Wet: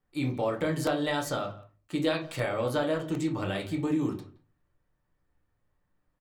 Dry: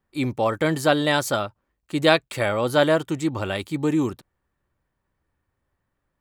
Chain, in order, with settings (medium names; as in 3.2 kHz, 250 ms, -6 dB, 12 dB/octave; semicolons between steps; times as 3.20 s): compression 3:1, threshold -25 dBFS, peak gain reduction 10.5 dB; speakerphone echo 170 ms, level -19 dB; on a send at -1 dB: reverberation RT60 0.35 s, pre-delay 7 ms; on the sum: crackling interface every 0.76 s, samples 64, repeat, from 0.87 s; trim -5.5 dB